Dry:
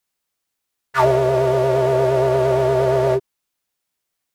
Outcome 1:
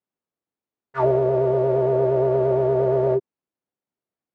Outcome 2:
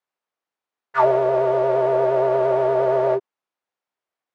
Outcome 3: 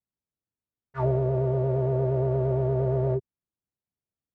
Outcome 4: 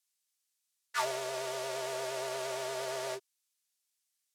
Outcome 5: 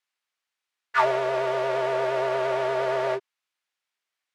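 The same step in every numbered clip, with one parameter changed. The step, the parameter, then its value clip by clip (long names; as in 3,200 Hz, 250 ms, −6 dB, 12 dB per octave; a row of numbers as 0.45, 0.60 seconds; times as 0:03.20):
resonant band-pass, frequency: 280, 770, 100, 7,600, 2,000 Hertz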